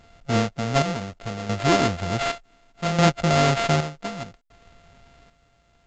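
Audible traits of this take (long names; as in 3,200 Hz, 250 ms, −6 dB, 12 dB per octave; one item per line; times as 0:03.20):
a buzz of ramps at a fixed pitch in blocks of 64 samples
chopped level 0.67 Hz, depth 65%, duty 55%
aliases and images of a low sample rate 5,800 Hz, jitter 20%
A-law companding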